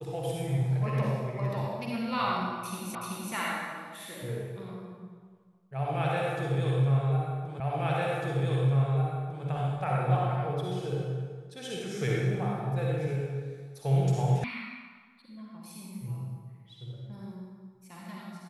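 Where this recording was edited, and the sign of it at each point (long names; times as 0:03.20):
0:02.95: the same again, the last 0.38 s
0:07.60: the same again, the last 1.85 s
0:14.44: cut off before it has died away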